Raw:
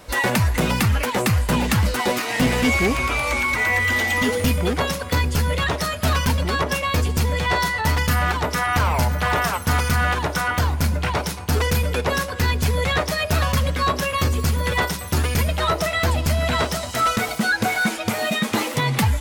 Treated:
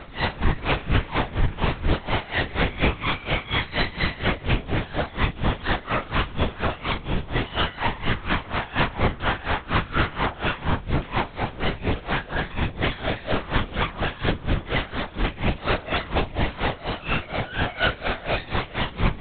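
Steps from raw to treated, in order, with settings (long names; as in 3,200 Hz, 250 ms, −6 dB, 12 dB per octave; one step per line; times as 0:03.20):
wavefolder on the positive side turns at −24 dBFS
brickwall limiter −24.5 dBFS, peak gain reduction 11.5 dB
on a send: flutter between parallel walls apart 5.8 metres, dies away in 0.68 s
on the sum: linear-prediction vocoder at 8 kHz whisper
tremolo with a sine in dB 4.2 Hz, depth 20 dB
level +8.5 dB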